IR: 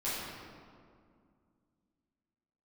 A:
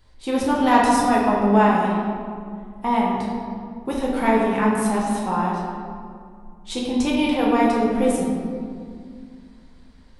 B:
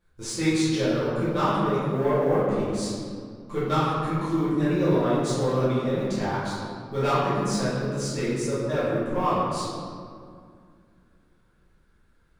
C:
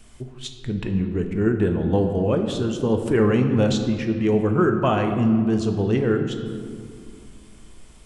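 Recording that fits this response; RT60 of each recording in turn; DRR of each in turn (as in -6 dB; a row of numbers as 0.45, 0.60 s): B; 2.2, 2.2, 2.3 s; -4.5, -11.5, 4.5 dB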